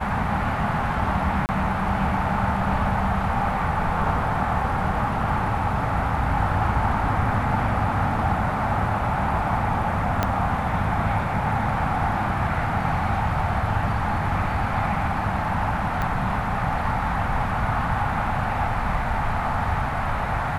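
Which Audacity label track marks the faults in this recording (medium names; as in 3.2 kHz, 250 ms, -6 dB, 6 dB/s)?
1.460000	1.490000	dropout 29 ms
10.230000	10.230000	pop -7 dBFS
16.020000	16.020000	pop -14 dBFS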